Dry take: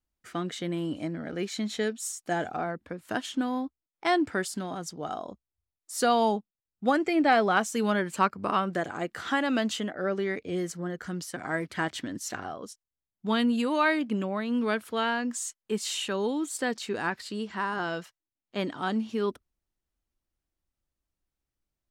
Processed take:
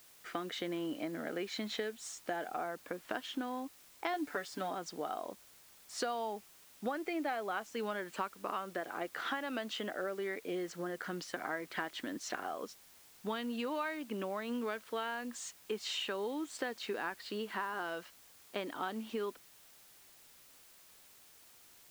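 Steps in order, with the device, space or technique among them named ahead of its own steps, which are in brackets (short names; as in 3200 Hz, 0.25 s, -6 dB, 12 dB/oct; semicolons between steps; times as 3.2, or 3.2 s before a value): baby monitor (BPF 330–4000 Hz; compressor, threshold -37 dBFS, peak gain reduction 18.5 dB; white noise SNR 20 dB); 4.13–4.7 comb 6.9 ms, depth 68%; gain +2 dB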